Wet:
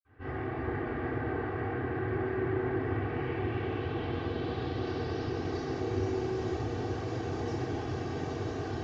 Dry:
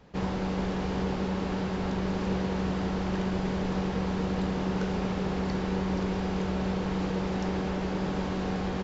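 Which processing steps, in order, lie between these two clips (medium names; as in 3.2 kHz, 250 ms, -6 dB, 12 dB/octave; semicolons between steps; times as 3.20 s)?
comb filter that takes the minimum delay 2.6 ms; low-pass sweep 1.9 kHz -> 6.6 kHz, 2.61–5.85 s; reverb removal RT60 0.76 s; reverberation RT60 3.5 s, pre-delay 47 ms; trim -5 dB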